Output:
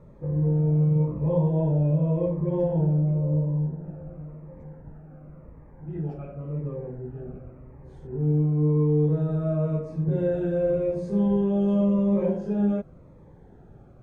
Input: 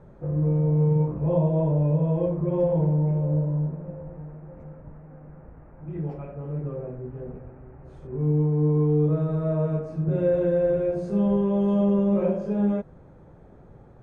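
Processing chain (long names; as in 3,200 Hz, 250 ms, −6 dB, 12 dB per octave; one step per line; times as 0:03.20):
0:03.02–0:03.84: high-shelf EQ 2,300 Hz −9.5 dB
phaser whose notches keep moving one way falling 0.92 Hz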